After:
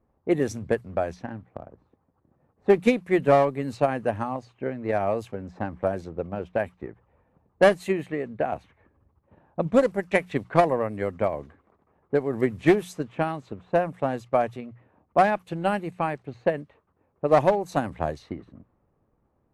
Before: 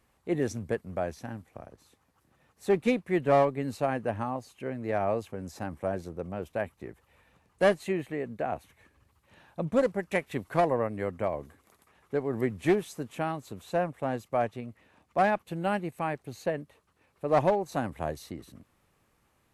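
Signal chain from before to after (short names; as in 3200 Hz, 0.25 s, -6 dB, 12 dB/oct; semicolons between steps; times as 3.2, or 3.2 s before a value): low-pass opened by the level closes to 710 Hz, open at -26 dBFS; notches 60/120/180 Hz; transient shaper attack +6 dB, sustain +1 dB; gain +2 dB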